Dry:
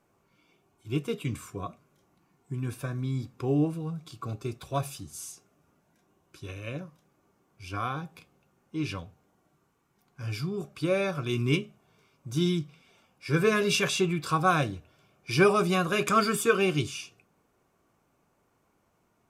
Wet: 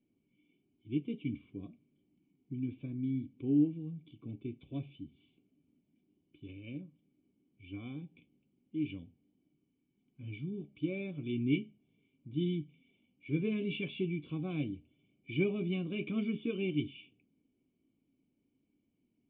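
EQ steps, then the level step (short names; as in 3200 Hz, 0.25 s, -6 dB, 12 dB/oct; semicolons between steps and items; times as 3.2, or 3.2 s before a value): vocal tract filter i; low shelf 360 Hz -3 dB; bell 1500 Hz -7.5 dB 0.96 oct; +4.5 dB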